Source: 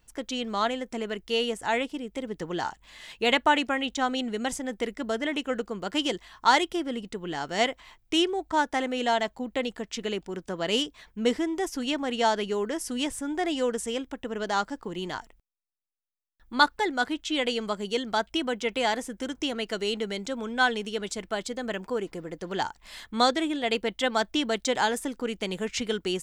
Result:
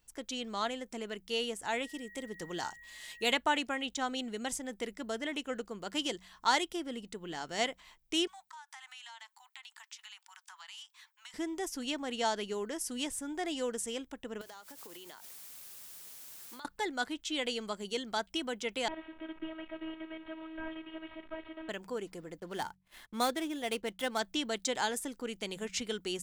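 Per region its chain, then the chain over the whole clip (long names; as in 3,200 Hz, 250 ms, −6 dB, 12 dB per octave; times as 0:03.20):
0:01.82–0:03.32: high-shelf EQ 5,900 Hz +8 dB + steady tone 1,900 Hz −44 dBFS
0:08.27–0:11.34: Butterworth high-pass 830 Hz 72 dB per octave + downward compressor 10 to 1, threshold −39 dBFS
0:14.41–0:16.65: high-pass filter 380 Hz + bit-depth reduction 8 bits, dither triangular + downward compressor 16 to 1, threshold −38 dBFS
0:18.88–0:21.69: linear delta modulator 16 kbit/s, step −37 dBFS + phases set to zero 320 Hz
0:22.40–0:24.19: running median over 9 samples + noise gate −49 dBFS, range −25 dB
whole clip: high-shelf EQ 4,600 Hz +8.5 dB; hum removal 46.57 Hz, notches 4; level −8.5 dB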